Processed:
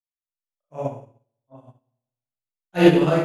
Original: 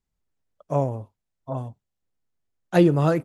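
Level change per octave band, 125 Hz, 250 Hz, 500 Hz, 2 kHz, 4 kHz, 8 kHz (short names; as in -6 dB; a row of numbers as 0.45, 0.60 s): -2.5 dB, +3.0 dB, +2.0 dB, +5.5 dB, +8.5 dB, n/a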